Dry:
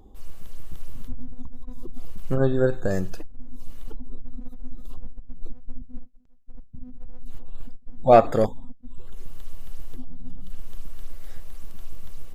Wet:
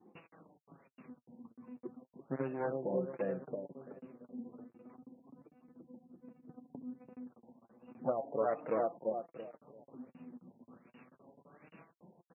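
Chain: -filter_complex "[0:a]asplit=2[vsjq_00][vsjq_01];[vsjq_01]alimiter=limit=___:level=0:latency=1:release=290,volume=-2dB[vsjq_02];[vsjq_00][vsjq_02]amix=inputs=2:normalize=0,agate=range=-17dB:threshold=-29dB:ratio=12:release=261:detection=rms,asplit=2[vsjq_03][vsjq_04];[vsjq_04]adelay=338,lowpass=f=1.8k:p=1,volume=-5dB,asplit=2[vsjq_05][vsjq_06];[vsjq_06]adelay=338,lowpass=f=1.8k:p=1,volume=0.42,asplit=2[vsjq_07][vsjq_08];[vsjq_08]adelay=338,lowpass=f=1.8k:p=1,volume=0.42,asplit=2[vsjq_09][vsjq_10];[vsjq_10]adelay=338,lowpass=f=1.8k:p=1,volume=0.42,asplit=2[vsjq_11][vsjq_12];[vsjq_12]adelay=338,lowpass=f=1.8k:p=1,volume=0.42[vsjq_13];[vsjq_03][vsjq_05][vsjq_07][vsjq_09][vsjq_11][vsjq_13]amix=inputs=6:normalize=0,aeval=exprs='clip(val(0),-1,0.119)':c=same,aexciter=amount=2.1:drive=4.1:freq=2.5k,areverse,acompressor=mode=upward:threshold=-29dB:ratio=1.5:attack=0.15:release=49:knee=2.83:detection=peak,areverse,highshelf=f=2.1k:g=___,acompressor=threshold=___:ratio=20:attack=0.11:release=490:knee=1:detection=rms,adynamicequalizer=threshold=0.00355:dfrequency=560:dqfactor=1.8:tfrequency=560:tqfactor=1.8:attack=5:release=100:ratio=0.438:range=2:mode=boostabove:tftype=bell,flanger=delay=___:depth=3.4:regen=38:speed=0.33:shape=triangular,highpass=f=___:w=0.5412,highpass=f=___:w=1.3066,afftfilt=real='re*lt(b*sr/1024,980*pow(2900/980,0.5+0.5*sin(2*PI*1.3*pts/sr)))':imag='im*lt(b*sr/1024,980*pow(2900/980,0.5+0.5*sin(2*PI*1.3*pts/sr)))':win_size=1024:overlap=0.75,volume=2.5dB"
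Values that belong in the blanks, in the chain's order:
-13dB, 3, -24dB, 5.5, 180, 180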